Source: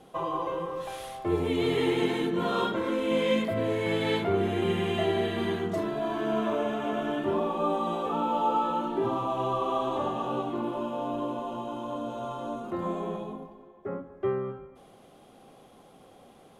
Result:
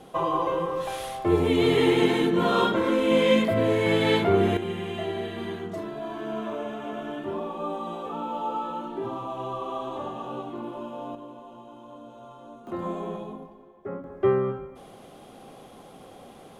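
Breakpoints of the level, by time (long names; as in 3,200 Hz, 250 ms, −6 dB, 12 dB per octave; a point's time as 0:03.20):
+5.5 dB
from 0:04.57 −4 dB
from 0:11.15 −10.5 dB
from 0:12.67 0 dB
from 0:14.04 +7 dB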